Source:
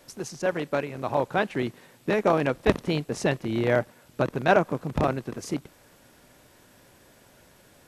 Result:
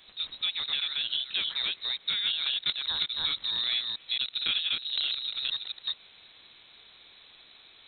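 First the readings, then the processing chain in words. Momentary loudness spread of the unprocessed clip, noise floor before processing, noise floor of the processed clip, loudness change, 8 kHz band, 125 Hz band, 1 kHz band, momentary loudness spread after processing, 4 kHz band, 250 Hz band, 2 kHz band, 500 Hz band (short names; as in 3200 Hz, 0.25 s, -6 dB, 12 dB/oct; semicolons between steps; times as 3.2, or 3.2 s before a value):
11 LU, -57 dBFS, -56 dBFS, -2.0 dB, under -35 dB, under -25 dB, -19.0 dB, 5 LU, +16.5 dB, under -25 dB, -6.0 dB, under -30 dB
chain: reverse delay 0.22 s, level -2.5 dB; compressor 4:1, threshold -28 dBFS, peak gain reduction 12 dB; inverted band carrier 4000 Hz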